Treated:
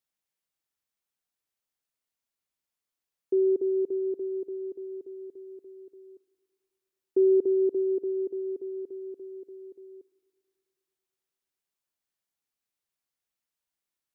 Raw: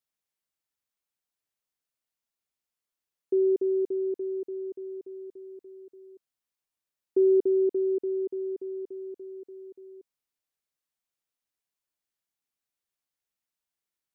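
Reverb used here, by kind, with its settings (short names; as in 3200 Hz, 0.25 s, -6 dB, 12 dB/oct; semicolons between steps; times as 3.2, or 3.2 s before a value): spring tank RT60 2.3 s, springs 36/58 ms, DRR 19.5 dB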